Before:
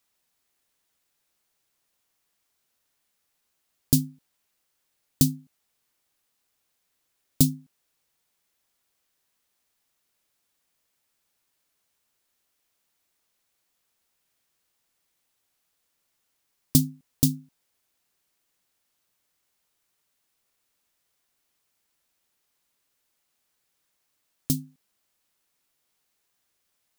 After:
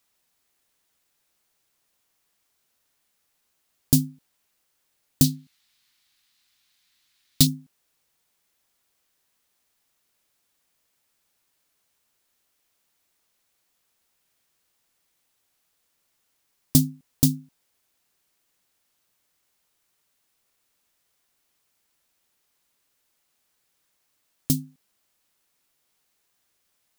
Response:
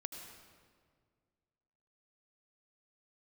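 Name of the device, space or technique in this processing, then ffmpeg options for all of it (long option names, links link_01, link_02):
parallel distortion: -filter_complex "[0:a]asplit=2[link_01][link_02];[link_02]asoftclip=type=hard:threshold=-15dB,volume=-5dB[link_03];[link_01][link_03]amix=inputs=2:normalize=0,asettb=1/sr,asplit=3[link_04][link_05][link_06];[link_04]atrim=end=5.244[link_07];[link_05]atrim=start=5.24:end=7.47,asetpts=PTS-STARTPTS,afade=type=in:duration=0.004:curve=qsin,afade=type=out:start_time=2.226:duration=0.004:curve=qsin,equalizer=frequency=500:width_type=o:width=1:gain=-10,equalizer=frequency=2000:width_type=o:width=1:gain=5,equalizer=frequency=4000:width_type=o:width=1:gain=11[link_08];[link_06]atrim=start=7.466[link_09];[link_07][link_08]acrossfade=duration=0.004:curve1=hsin:curve2=qsin[link_10];[link_10][link_09]acrossfade=duration=0.004:curve1=qsin:curve2=hsin,volume=-1dB"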